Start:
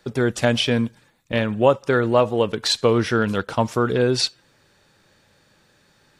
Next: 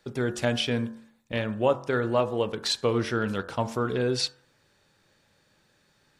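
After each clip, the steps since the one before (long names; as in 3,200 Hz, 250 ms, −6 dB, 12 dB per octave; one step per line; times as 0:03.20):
hum removal 45.14 Hz, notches 40
level −6.5 dB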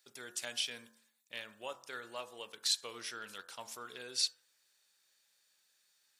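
first difference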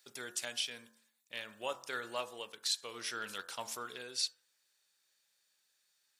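speech leveller within 4 dB 0.5 s
level +1 dB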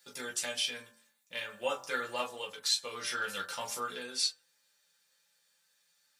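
convolution reverb, pre-delay 3 ms, DRR −4 dB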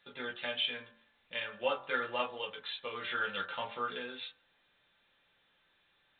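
level +1 dB
A-law companding 64 kbit/s 8,000 Hz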